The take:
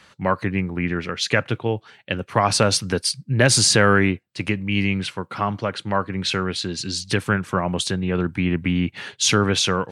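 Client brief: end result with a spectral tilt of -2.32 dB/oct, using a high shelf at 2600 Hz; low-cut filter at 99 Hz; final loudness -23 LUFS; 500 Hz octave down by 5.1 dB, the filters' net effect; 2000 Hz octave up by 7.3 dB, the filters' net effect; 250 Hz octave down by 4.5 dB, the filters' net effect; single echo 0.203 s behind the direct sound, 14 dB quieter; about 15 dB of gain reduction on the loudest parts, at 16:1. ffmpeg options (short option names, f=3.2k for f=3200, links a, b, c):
-af "highpass=99,equalizer=f=250:t=o:g=-5,equalizer=f=500:t=o:g=-5.5,equalizer=f=2k:t=o:g=6,highshelf=f=2.6k:g=9,acompressor=threshold=-21dB:ratio=16,aecho=1:1:203:0.2,volume=2.5dB"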